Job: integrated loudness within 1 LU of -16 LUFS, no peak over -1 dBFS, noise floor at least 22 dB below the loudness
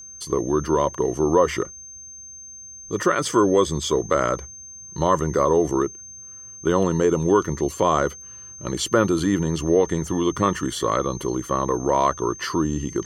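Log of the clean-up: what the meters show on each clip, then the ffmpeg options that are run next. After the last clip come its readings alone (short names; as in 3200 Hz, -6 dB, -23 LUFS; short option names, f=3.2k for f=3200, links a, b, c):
steady tone 6300 Hz; tone level -38 dBFS; loudness -22.0 LUFS; peak -5.0 dBFS; loudness target -16.0 LUFS
-> -af "bandreject=f=6.3k:w=30"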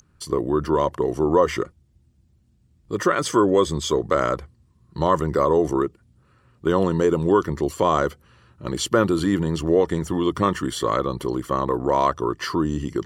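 steady tone none; loudness -22.0 LUFS; peak -5.0 dBFS; loudness target -16.0 LUFS
-> -af "volume=6dB,alimiter=limit=-1dB:level=0:latency=1"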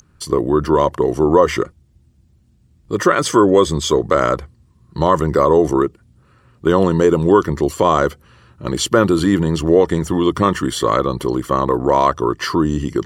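loudness -16.5 LUFS; peak -1.0 dBFS; noise floor -55 dBFS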